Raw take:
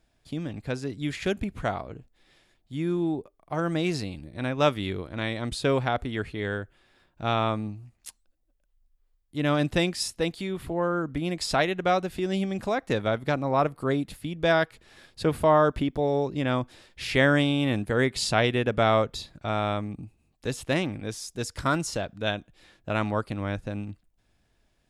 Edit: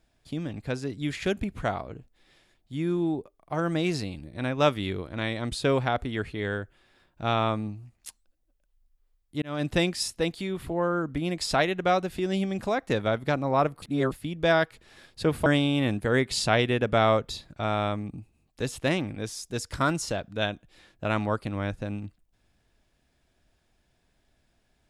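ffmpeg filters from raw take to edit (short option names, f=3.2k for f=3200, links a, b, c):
-filter_complex "[0:a]asplit=5[a][b][c][d][e];[a]atrim=end=9.42,asetpts=PTS-STARTPTS,afade=t=out:st=9.416:d=0.004:c=hsin[f];[b]atrim=start=9.42:end=13.822,asetpts=PTS-STARTPTS,afade=t=in:d=0.31[g];[c]atrim=start=13.818:end=14.122,asetpts=PTS-STARTPTS,areverse[h];[d]atrim=start=14.118:end=15.462[i];[e]atrim=start=17.308[j];[f][g]concat=n=2:v=0:a=1[k];[k][h]acrossfade=d=0.004:c1=hsin:c2=hsin[l];[l][i]acrossfade=d=0.004:c1=hsin:c2=hsin[m];[m][j]acrossfade=d=0.004:c1=hsin:c2=hsin"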